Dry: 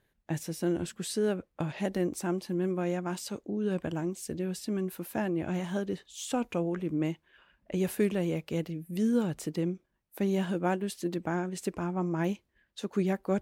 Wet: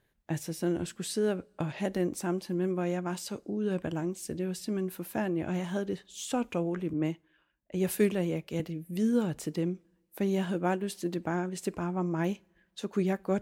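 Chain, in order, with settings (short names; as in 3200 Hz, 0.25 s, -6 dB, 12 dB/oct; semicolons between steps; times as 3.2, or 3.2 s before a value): two-slope reverb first 0.28 s, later 1.5 s, from -20 dB, DRR 20 dB; 6.93–8.6 three-band expander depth 70%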